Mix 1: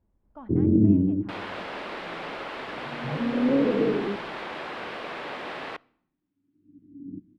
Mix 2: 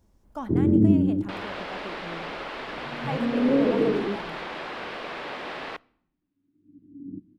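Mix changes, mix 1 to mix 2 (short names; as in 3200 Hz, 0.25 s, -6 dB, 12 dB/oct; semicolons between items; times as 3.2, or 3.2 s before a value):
speech +8.0 dB; second sound: add air absorption 410 m; master: remove air absorption 470 m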